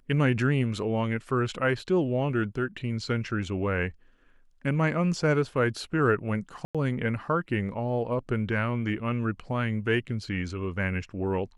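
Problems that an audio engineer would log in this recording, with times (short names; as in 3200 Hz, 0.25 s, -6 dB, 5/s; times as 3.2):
6.65–6.75 gap 96 ms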